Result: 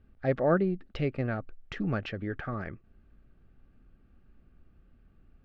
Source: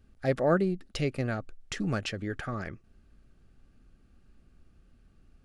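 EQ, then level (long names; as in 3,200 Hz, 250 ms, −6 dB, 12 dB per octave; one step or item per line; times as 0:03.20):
low-pass filter 2,700 Hz 12 dB per octave
high-frequency loss of the air 60 metres
0.0 dB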